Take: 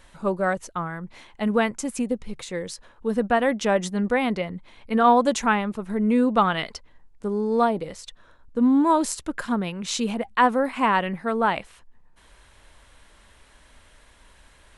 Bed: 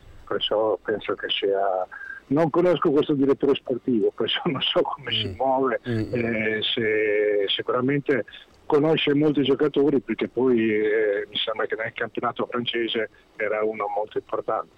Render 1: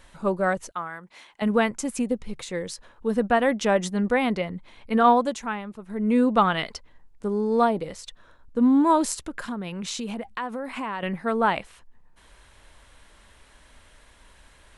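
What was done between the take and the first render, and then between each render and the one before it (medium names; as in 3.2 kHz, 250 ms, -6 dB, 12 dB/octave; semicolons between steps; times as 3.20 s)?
0.71–1.42 s: high-pass 740 Hz 6 dB/octave; 5.06–6.17 s: dip -9 dB, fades 0.31 s; 9.26–11.03 s: compression 5:1, threshold -28 dBFS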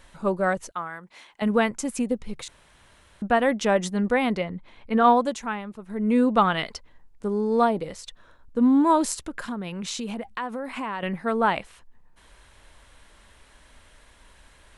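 2.48–3.22 s: room tone; 4.43–5.03 s: treble shelf 5.9 kHz -11 dB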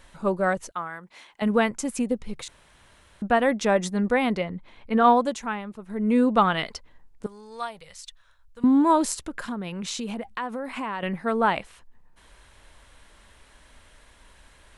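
3.44–4.16 s: band-stop 3 kHz; 7.26–8.64 s: amplifier tone stack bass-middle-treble 10-0-10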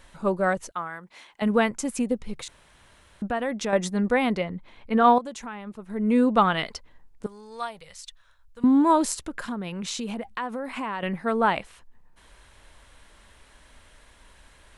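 3.26–3.73 s: compression 2:1, threshold -28 dBFS; 5.18–5.67 s: compression 3:1, threshold -34 dBFS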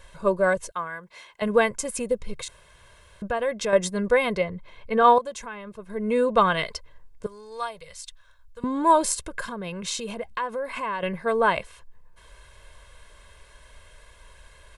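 dynamic bell 9.3 kHz, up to +4 dB, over -51 dBFS, Q 1.9; comb 1.9 ms, depth 70%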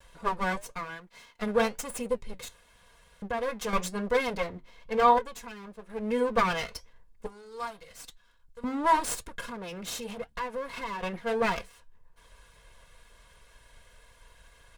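comb filter that takes the minimum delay 4.2 ms; flange 0.97 Hz, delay 5 ms, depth 5 ms, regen -74%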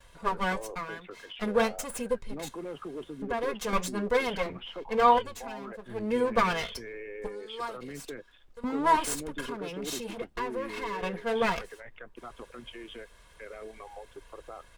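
add bed -19.5 dB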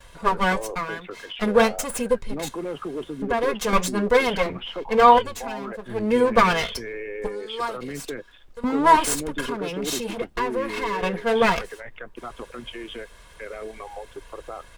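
trim +8 dB; peak limiter -3 dBFS, peak gain reduction 1 dB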